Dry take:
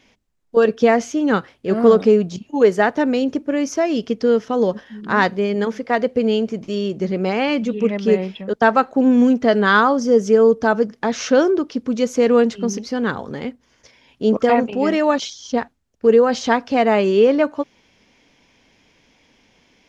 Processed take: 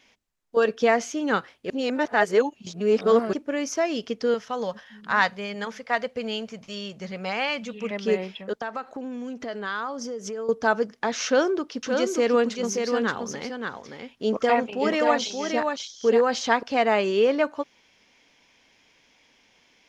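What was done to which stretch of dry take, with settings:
0:01.70–0:03.33: reverse
0:04.34–0:07.91: parametric band 340 Hz −14.5 dB 0.72 octaves
0:08.54–0:10.49: downward compressor 10 to 1, threshold −22 dBFS
0:11.25–0:16.63: single-tap delay 577 ms −5 dB
whole clip: low-shelf EQ 460 Hz −10.5 dB; level −1.5 dB

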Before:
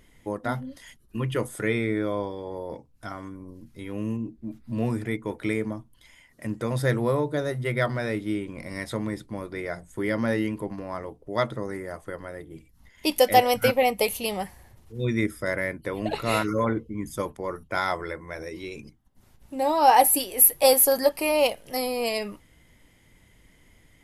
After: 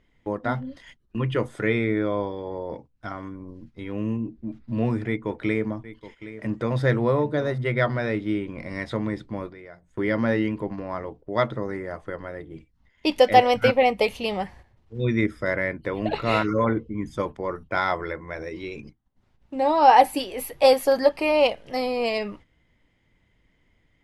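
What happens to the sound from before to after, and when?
0:05.07–0:07.58: single-tap delay 769 ms −14.5 dB
0:09.49–0:09.90: downward compressor 2.5 to 1, threshold −49 dBFS
whole clip: noise gate −47 dBFS, range −10 dB; low-pass filter 3,900 Hz 12 dB per octave; level +2.5 dB

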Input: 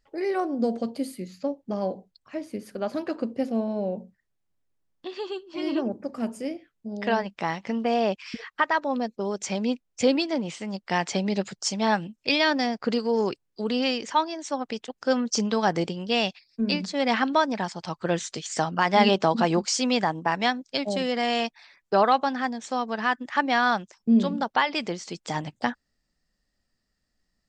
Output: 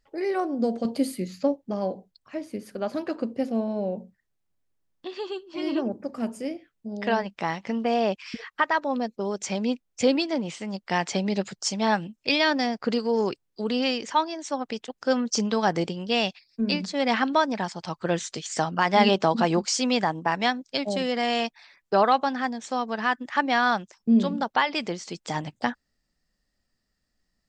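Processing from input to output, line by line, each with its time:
0:00.85–0:01.56: clip gain +5 dB

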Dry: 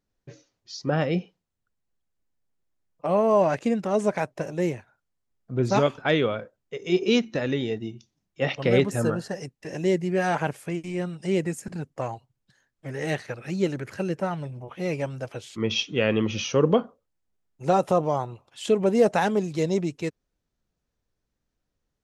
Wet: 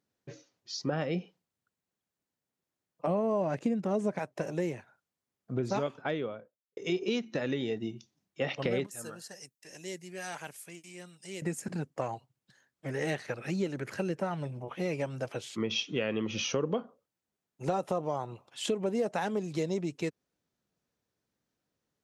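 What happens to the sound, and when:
0:03.07–0:04.19: low-shelf EQ 420 Hz +10.5 dB
0:05.56–0:06.77: fade out and dull
0:08.86–0:11.42: first-order pre-emphasis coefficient 0.9
whole clip: high-pass filter 130 Hz; downward compressor 4 to 1, threshold −29 dBFS

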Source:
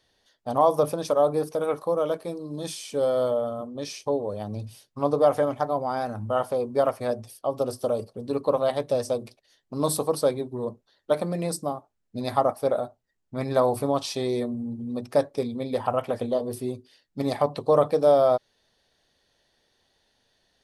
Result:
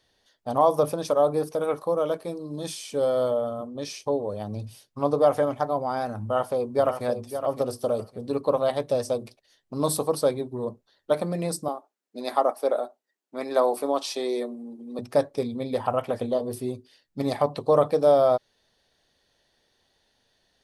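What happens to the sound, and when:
0:06.22–0:07.06: delay throw 560 ms, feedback 25%, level −9.5 dB
0:11.68–0:14.99: high-pass filter 280 Hz 24 dB per octave

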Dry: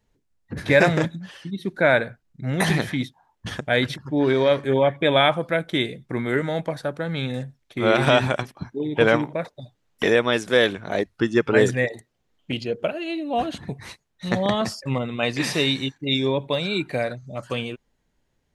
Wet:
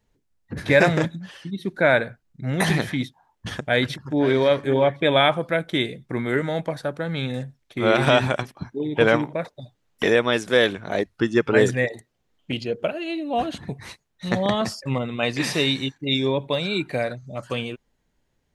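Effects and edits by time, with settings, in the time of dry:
0:03.57–0:04.35: delay throw 530 ms, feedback 15%, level −13.5 dB

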